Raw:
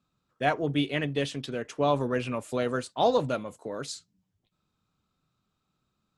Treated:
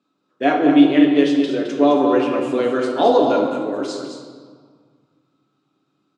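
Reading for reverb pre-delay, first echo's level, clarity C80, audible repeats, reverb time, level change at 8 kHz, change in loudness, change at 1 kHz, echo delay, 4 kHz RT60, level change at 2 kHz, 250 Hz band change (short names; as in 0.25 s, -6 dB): 7 ms, -7.5 dB, 3.5 dB, 1, 1.8 s, n/a, +12.5 dB, +9.5 dB, 0.214 s, 1.1 s, +7.0 dB, +17.0 dB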